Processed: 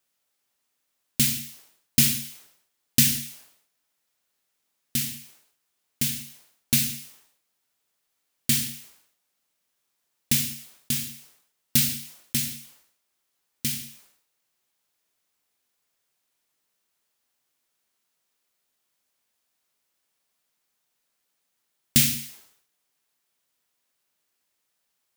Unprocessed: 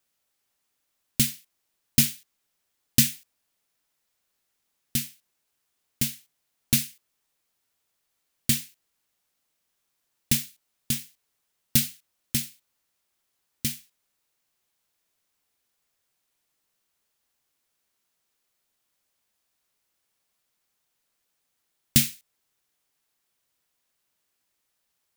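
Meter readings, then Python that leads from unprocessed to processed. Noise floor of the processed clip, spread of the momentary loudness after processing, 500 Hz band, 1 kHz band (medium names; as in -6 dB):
-77 dBFS, 19 LU, +0.5 dB, no reading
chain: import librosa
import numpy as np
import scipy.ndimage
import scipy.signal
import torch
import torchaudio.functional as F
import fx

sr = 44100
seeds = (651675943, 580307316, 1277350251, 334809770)

y = fx.low_shelf(x, sr, hz=99.0, db=-7.5)
y = fx.rev_gated(y, sr, seeds[0], gate_ms=230, shape='falling', drr_db=11.0)
y = fx.sustainer(y, sr, db_per_s=89.0)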